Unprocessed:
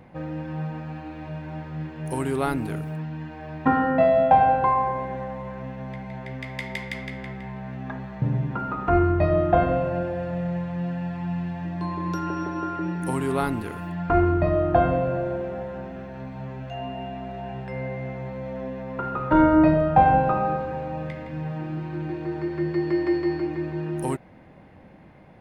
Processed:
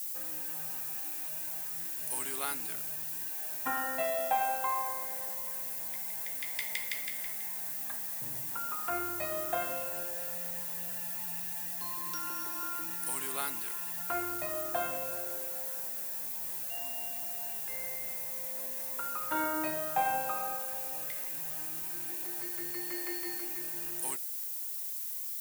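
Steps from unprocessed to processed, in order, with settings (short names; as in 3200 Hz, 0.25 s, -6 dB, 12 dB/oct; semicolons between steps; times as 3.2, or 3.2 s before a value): added noise blue -48 dBFS; differentiator; gain +5.5 dB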